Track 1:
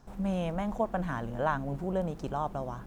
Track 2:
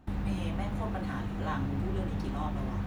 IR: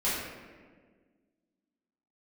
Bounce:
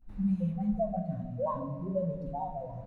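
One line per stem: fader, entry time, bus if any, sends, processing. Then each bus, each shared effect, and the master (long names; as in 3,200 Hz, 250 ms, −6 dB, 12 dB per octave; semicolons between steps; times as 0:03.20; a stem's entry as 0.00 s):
+0.5 dB, 0.00 s, send −12 dB, spectral peaks only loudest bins 2
−15.5 dB, 18 ms, no send, automatic ducking −8 dB, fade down 1.00 s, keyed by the first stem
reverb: on, RT60 1.6 s, pre-delay 3 ms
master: notch filter 3,200 Hz, Q 10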